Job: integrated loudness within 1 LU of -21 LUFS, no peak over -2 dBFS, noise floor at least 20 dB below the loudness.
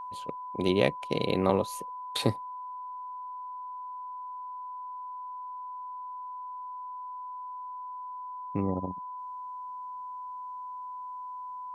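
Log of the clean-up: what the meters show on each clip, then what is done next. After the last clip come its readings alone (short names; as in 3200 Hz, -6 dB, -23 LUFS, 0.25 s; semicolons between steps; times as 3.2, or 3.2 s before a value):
steady tone 1000 Hz; tone level -37 dBFS; loudness -34.5 LUFS; peak -7.5 dBFS; loudness target -21.0 LUFS
-> notch 1000 Hz, Q 30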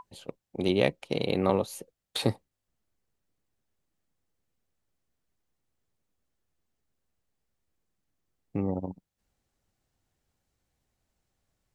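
steady tone none; loudness -29.5 LUFS; peak -7.5 dBFS; loudness target -21.0 LUFS
-> gain +8.5 dB; limiter -2 dBFS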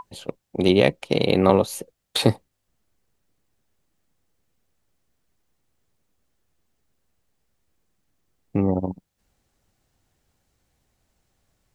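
loudness -21.5 LUFS; peak -2.0 dBFS; noise floor -76 dBFS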